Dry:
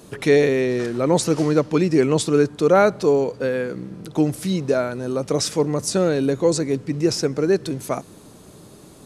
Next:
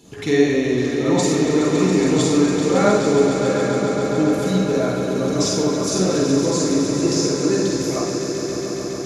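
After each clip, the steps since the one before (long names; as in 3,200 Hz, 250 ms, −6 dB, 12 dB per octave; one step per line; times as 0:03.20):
echo that builds up and dies away 139 ms, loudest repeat 5, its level −10.5 dB
convolution reverb RT60 1.0 s, pre-delay 38 ms, DRR −4 dB
level −9.5 dB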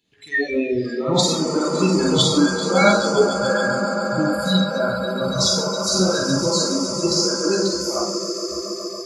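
noise reduction from a noise print of the clip's start 28 dB
flat-topped bell 2,700 Hz +12.5 dB
level +1.5 dB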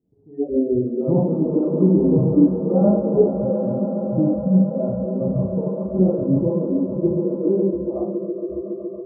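Gaussian smoothing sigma 15 samples
level +4.5 dB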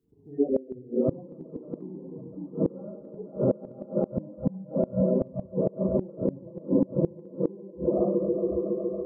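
spectral magnitudes quantised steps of 30 dB
feedback delay with all-pass diffusion 480 ms, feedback 44%, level −15 dB
gate with flip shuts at −12 dBFS, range −24 dB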